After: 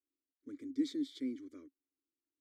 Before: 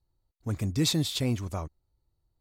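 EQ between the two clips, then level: vowel filter i; resonant low shelf 180 Hz -13 dB, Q 1.5; fixed phaser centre 720 Hz, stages 6; +2.5 dB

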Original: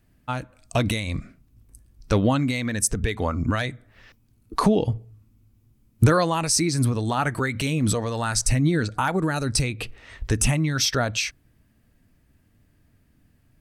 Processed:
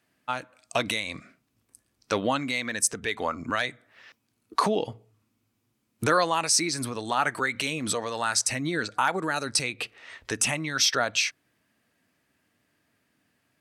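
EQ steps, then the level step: weighting filter A; 0.0 dB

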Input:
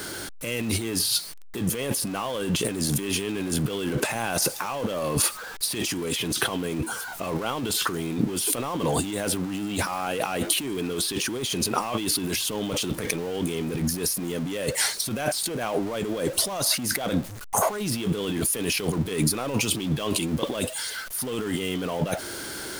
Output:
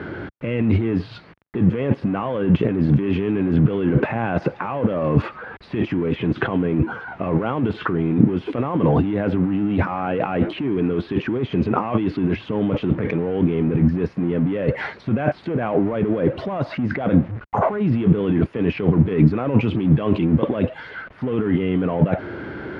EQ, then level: HPF 70 Hz; LPF 2300 Hz 24 dB/oct; low shelf 380 Hz +11 dB; +2.0 dB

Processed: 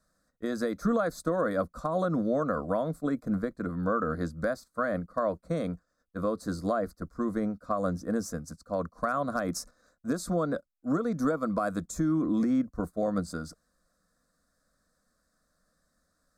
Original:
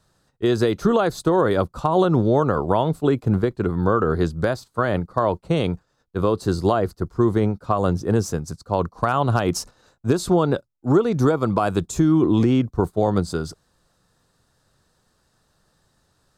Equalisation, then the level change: fixed phaser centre 580 Hz, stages 8; -6.0 dB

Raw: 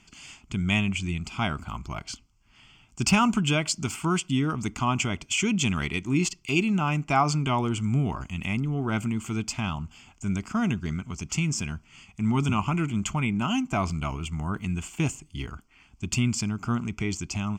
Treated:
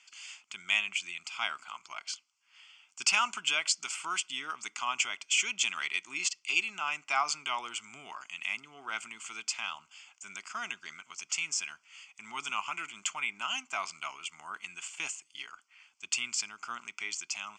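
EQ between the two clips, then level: HPF 1400 Hz 12 dB/oct; LPF 8700 Hz 24 dB/oct; 0.0 dB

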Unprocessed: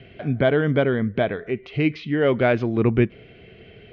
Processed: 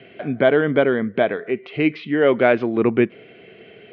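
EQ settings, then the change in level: BPF 240–3400 Hz; +4.0 dB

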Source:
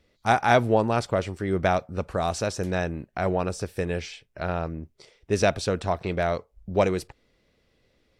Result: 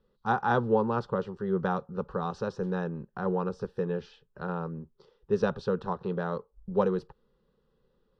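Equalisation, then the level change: LPF 9600 Hz; air absorption 320 m; fixed phaser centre 440 Hz, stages 8; 0.0 dB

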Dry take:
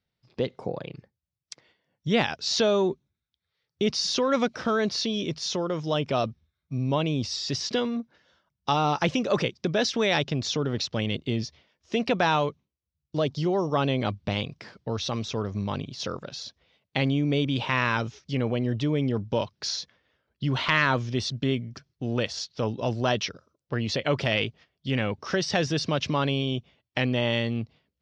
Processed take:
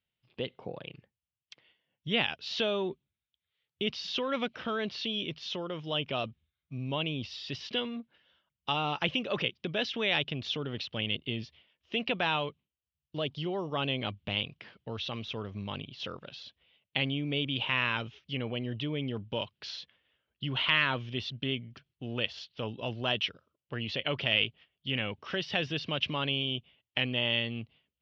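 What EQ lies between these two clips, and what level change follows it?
synth low-pass 3000 Hz, resonance Q 4.3; -9.0 dB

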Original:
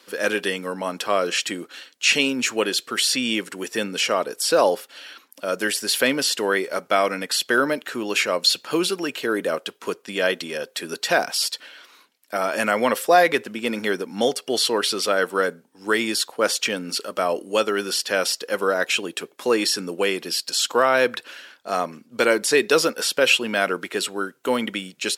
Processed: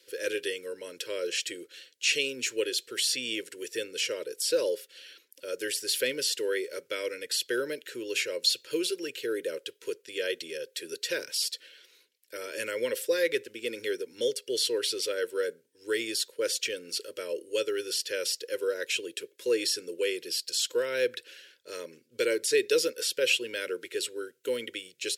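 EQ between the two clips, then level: Chebyshev band-stop 500–1100 Hz, order 2; bell 280 Hz -9 dB 0.21 oct; fixed phaser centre 480 Hz, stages 4; -5.0 dB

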